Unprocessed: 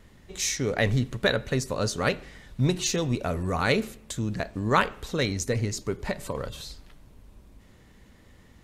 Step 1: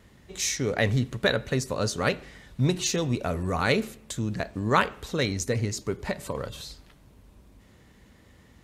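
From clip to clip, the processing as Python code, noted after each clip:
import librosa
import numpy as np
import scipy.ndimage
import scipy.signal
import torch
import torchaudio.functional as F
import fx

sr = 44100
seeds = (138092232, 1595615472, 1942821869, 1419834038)

y = scipy.signal.sosfilt(scipy.signal.butter(2, 47.0, 'highpass', fs=sr, output='sos'), x)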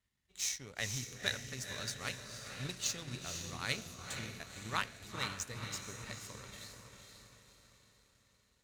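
y = fx.tone_stack(x, sr, knobs='5-5-5')
y = fx.echo_diffused(y, sr, ms=492, feedback_pct=58, wet_db=-3.5)
y = fx.power_curve(y, sr, exponent=1.4)
y = y * 10.0 ** (3.0 / 20.0)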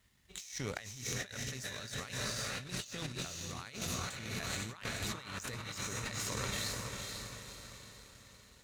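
y = fx.over_compress(x, sr, threshold_db=-50.0, ratio=-1.0)
y = y * 10.0 ** (7.5 / 20.0)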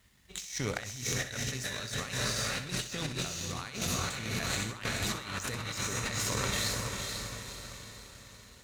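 y = fx.echo_feedback(x, sr, ms=64, feedback_pct=37, wet_db=-11.5)
y = y * 10.0 ** (5.5 / 20.0)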